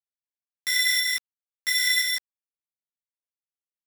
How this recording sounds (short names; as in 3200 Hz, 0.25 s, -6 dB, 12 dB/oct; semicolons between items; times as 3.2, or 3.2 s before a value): a buzz of ramps at a fixed pitch in blocks of 8 samples; tremolo saw up 1 Hz, depth 35%; a quantiser's noise floor 8-bit, dither none; a shimmering, thickened sound